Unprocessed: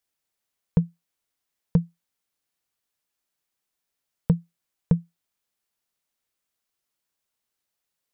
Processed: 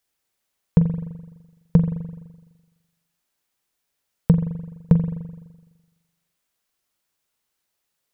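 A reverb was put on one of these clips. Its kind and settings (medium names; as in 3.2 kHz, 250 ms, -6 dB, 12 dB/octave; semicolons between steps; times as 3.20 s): spring tank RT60 1.2 s, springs 42 ms, chirp 55 ms, DRR 7 dB; trim +5 dB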